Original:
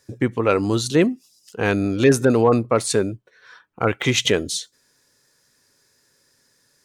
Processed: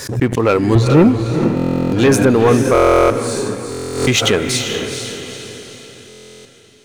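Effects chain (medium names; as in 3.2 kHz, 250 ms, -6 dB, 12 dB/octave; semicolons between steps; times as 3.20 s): 0.75–1.61 s: RIAA curve playback; waveshaping leveller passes 2; on a send: echo that smears into a reverb 456 ms, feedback 47%, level -6 dB; on the sum: buffer glitch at 1.55/2.73/3.70/6.08 s, samples 1024, times 15; swell ahead of each attack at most 83 dB/s; trim -2 dB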